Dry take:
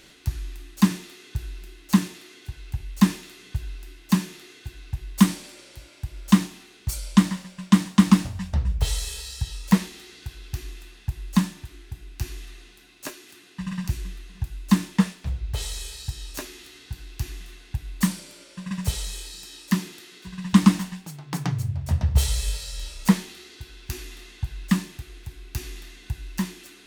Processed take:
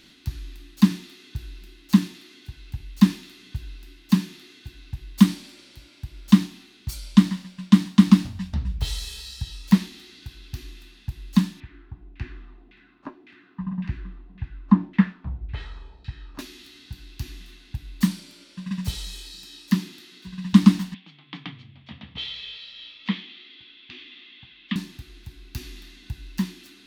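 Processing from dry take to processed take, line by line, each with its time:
0:11.60–0:16.39: auto-filter low-pass saw down 1.8 Hz 660–2,300 Hz
0:20.94–0:24.76: loudspeaker in its box 340–3,400 Hz, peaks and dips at 380 Hz −7 dB, 620 Hz −8 dB, 890 Hz −7 dB, 1,500 Hz −6 dB, 2,200 Hz +4 dB, 3,300 Hz +9 dB
whole clip: graphic EQ with 10 bands 250 Hz +10 dB, 500 Hz −8 dB, 4,000 Hz +6 dB, 8,000 Hz −5 dB; level −4 dB

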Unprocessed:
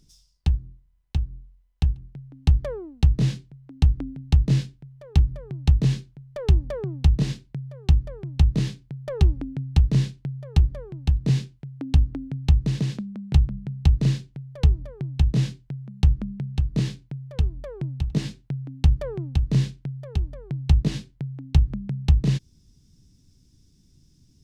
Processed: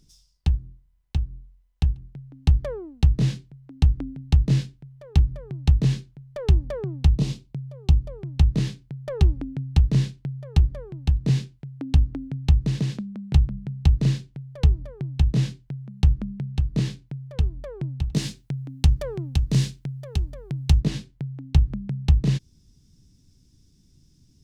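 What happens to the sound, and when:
0:07.15–0:08.23: parametric band 1,700 Hz −9.5 dB 0.57 octaves
0:18.14–0:20.81: high-shelf EQ 4,200 Hz +11.5 dB

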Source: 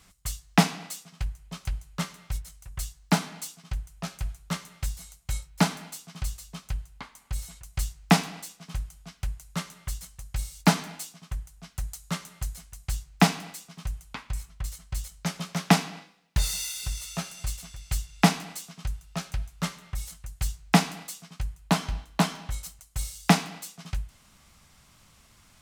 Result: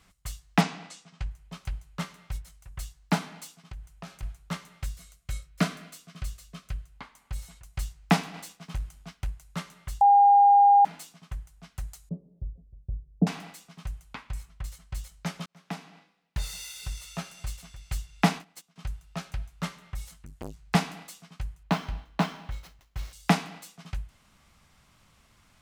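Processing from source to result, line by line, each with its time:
0:00.61–0:01.31: low-pass filter 8,200 Hz 24 dB per octave
0:03.53–0:04.23: downward compressor 4 to 1, threshold −34 dBFS
0:04.84–0:06.94: Butterworth band-reject 870 Hz, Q 3.8
0:08.34–0:09.30: leveller curve on the samples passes 1
0:10.01–0:10.85: beep over 808 Hz −11.5 dBFS
0:12.09–0:13.27: Butterworth low-pass 520 Hz
0:15.46–0:16.86: fade in
0:18.24–0:18.76: noise gate −38 dBFS, range −18 dB
0:20.09–0:20.75: saturating transformer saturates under 2,700 Hz
0:21.63–0:23.13: running median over 5 samples
whole clip: bass and treble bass −1 dB, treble −6 dB; level −2 dB

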